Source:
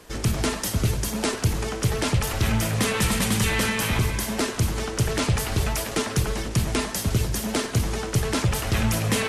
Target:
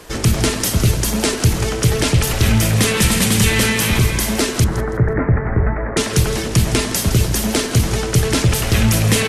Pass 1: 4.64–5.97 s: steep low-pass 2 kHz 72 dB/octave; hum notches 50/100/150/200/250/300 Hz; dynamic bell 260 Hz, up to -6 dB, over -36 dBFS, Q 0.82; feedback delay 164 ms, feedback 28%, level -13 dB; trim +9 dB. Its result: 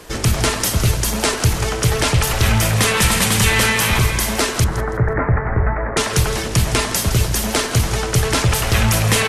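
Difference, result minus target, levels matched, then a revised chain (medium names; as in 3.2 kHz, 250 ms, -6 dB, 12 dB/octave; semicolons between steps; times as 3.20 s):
1 kHz band +4.5 dB
4.64–5.97 s: steep low-pass 2 kHz 72 dB/octave; hum notches 50/100/150/200/250/300 Hz; dynamic bell 990 Hz, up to -6 dB, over -36 dBFS, Q 0.82; feedback delay 164 ms, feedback 28%, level -13 dB; trim +9 dB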